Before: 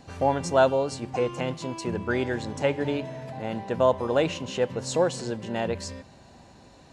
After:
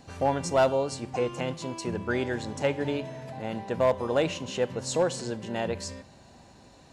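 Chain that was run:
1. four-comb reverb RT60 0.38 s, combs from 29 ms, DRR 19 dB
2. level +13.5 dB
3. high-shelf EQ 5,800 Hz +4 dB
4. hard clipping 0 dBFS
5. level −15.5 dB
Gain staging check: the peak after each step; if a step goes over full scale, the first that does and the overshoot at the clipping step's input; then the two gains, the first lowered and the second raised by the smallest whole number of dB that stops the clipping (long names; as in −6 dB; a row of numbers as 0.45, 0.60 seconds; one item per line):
−8.0, +5.5, +5.5, 0.0, −15.5 dBFS
step 2, 5.5 dB
step 2 +7.5 dB, step 5 −9.5 dB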